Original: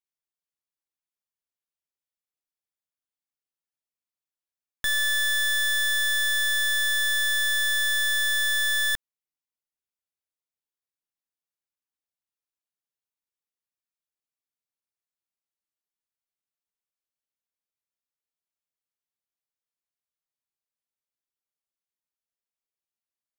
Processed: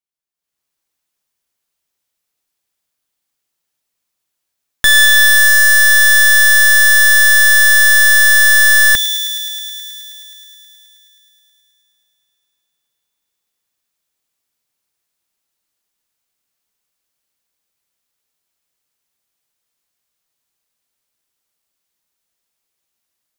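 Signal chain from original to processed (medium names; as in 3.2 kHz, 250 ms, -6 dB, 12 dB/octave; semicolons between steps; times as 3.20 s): level rider gain up to 16 dB; on a send: feedback echo behind a high-pass 106 ms, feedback 82%, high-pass 3.1 kHz, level -6 dB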